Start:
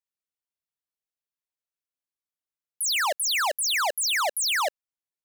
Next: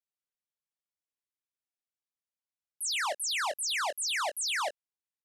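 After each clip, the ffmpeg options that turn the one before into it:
-filter_complex "[0:a]lowpass=f=11k:w=0.5412,lowpass=f=11k:w=1.3066,asplit=2[a][b];[b]adelay=21,volume=-9dB[c];[a][c]amix=inputs=2:normalize=0,volume=-7dB"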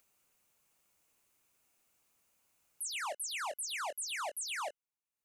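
-af "superequalizer=11b=0.631:13b=0.501:14b=0.562,acompressor=mode=upward:threshold=-53dB:ratio=2.5,alimiter=level_in=7.5dB:limit=-24dB:level=0:latency=1:release=94,volume=-7.5dB,volume=-2dB"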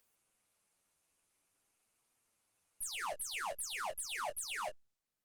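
-af "aeval=exprs='0.0224*(cos(1*acos(clip(val(0)/0.0224,-1,1)))-cos(1*PI/2))+0.00282*(cos(4*acos(clip(val(0)/0.0224,-1,1)))-cos(4*PI/2))':c=same,flanger=delay=8.2:depth=3.7:regen=-2:speed=0.47:shape=triangular,volume=2dB" -ar 48000 -c:a libopus -b:a 32k

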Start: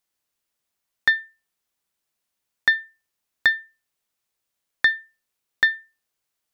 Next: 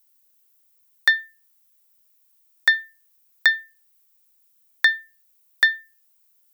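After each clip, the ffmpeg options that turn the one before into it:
-af "highpass=310,aemphasis=mode=production:type=bsi"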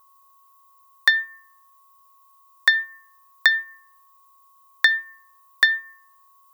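-af "aeval=exprs='val(0)+0.00141*sin(2*PI*1100*n/s)':c=same,bandreject=f=299.3:t=h:w=4,bandreject=f=598.6:t=h:w=4,bandreject=f=897.9:t=h:w=4,bandreject=f=1.1972k:t=h:w=4,bandreject=f=1.4965k:t=h:w=4,bandreject=f=1.7958k:t=h:w=4,bandreject=f=2.0951k:t=h:w=4,bandreject=f=2.3944k:t=h:w=4,bandreject=f=2.6937k:t=h:w=4,volume=1.5dB"

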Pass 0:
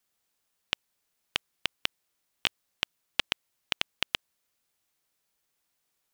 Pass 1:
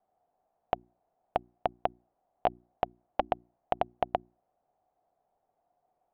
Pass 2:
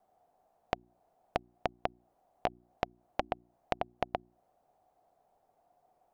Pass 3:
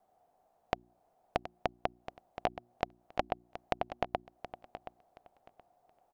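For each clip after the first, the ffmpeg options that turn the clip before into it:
-af "lowpass=f=720:t=q:w=8.2,bandreject=f=60:t=h:w=6,bandreject=f=120:t=h:w=6,bandreject=f=180:t=h:w=6,bandreject=f=240:t=h:w=6,bandreject=f=300:t=h:w=6,bandreject=f=360:t=h:w=6,volume=4.5dB"
-af "acompressor=threshold=-36dB:ratio=5,volume=6dB"
-af "aecho=1:1:724|1448|2172:0.237|0.0522|0.0115"

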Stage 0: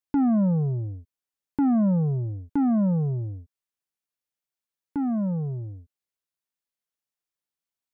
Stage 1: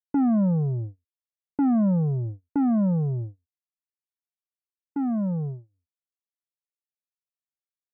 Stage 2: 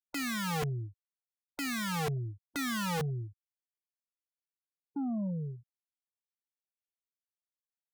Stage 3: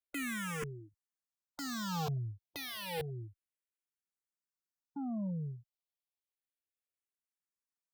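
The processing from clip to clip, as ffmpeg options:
-af "agate=range=-35dB:threshold=-31dB:ratio=16:detection=peak"
-af "afftfilt=real='re*gte(hypot(re,im),0.0355)':imag='im*gte(hypot(re,im),0.0355)':win_size=1024:overlap=0.75,aeval=exprs='(mod(12.6*val(0)+1,2)-1)/12.6':c=same,volume=-8dB"
-filter_complex "[0:a]asplit=2[a][b];[b]afreqshift=-0.3[c];[a][c]amix=inputs=2:normalize=1,volume=-1.5dB"

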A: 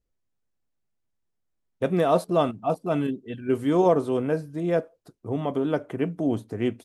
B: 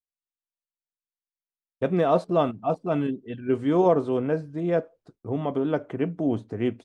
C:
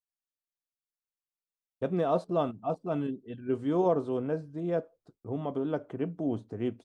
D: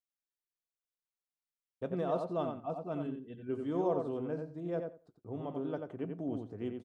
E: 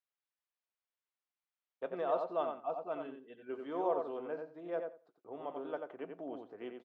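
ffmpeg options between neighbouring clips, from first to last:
-af "highshelf=f=5.8k:g=-12,agate=range=-33dB:threshold=-51dB:ratio=3:detection=peak,lowpass=f=8.7k:w=0.5412,lowpass=f=8.7k:w=1.3066"
-af "equalizer=f=2.1k:w=1.7:g=-5.5,volume=-6dB"
-filter_complex "[0:a]asplit=2[a][b];[b]adelay=89,lowpass=f=3.1k:p=1,volume=-5dB,asplit=2[c][d];[d]adelay=89,lowpass=f=3.1k:p=1,volume=0.16,asplit=2[e][f];[f]adelay=89,lowpass=f=3.1k:p=1,volume=0.16[g];[a][c][e][g]amix=inputs=4:normalize=0,volume=-7dB"
-af "highpass=560,lowpass=3k,volume=3dB"

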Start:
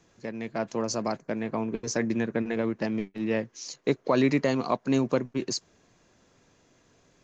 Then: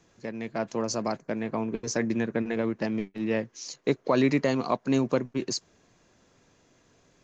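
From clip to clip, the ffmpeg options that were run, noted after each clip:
-af anull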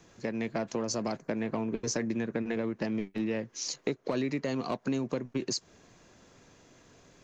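-filter_complex "[0:a]acrossover=split=550|1800[a][b][c];[b]asoftclip=type=tanh:threshold=-32.5dB[d];[a][d][c]amix=inputs=3:normalize=0,acompressor=threshold=-33dB:ratio=6,volume=4.5dB"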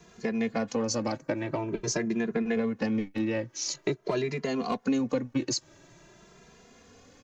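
-filter_complex "[0:a]asplit=2[a][b];[b]adelay=2.5,afreqshift=0.47[c];[a][c]amix=inputs=2:normalize=1,volume=6dB"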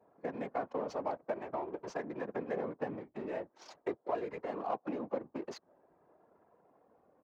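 -af "adynamicsmooth=sensitivity=8:basefreq=740,afftfilt=real='hypot(re,im)*cos(2*PI*random(0))':imag='hypot(re,im)*sin(2*PI*random(1))':win_size=512:overlap=0.75,bandpass=f=810:t=q:w=1.4:csg=0,volume=4.5dB"

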